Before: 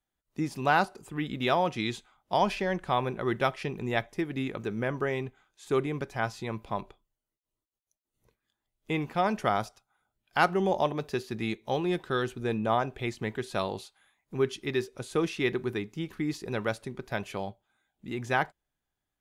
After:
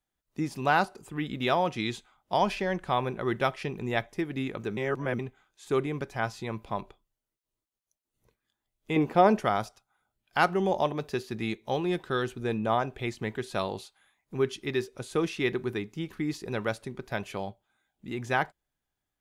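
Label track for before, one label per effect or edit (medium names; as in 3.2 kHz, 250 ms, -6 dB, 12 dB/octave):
4.770000	5.190000	reverse
8.960000	9.400000	peaking EQ 410 Hz +10 dB 2.2 oct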